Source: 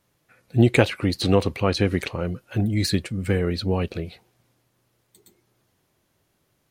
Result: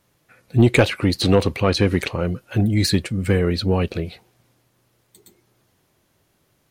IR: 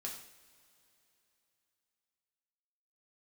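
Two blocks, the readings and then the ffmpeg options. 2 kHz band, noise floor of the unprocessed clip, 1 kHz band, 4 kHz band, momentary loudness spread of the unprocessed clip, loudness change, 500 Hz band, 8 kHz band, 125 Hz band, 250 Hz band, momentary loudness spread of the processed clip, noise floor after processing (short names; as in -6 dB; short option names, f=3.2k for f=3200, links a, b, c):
+3.5 dB, -70 dBFS, +2.5 dB, +4.0 dB, 10 LU, +3.5 dB, +3.0 dB, +4.5 dB, +3.5 dB, +3.0 dB, 9 LU, -66 dBFS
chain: -af "asoftclip=type=tanh:threshold=-8.5dB,volume=4.5dB"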